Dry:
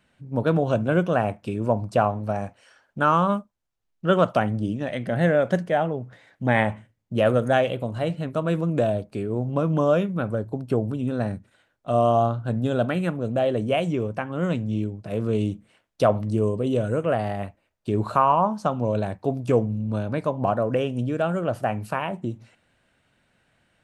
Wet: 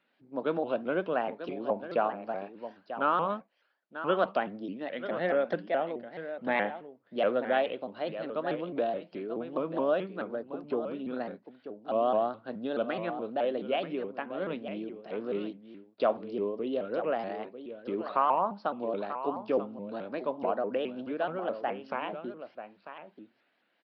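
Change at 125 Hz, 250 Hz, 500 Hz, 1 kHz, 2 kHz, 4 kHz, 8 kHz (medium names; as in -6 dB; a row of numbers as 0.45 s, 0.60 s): -23.5 dB, -10.5 dB, -6.5 dB, -6.5 dB, -7.0 dB, -6.5 dB, no reading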